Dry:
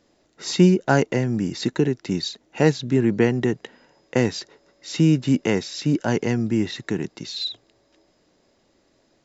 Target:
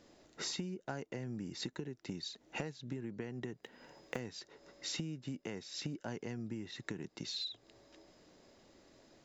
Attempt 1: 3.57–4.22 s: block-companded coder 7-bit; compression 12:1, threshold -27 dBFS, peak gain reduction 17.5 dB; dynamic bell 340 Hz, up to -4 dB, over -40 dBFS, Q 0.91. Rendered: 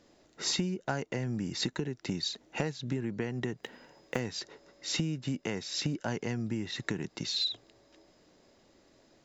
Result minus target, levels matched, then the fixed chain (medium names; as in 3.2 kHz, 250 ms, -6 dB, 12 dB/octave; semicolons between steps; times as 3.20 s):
compression: peak gain reduction -10 dB
3.57–4.22 s: block-companded coder 7-bit; compression 12:1, threshold -38 dBFS, peak gain reduction 28 dB; dynamic bell 340 Hz, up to -4 dB, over -40 dBFS, Q 0.91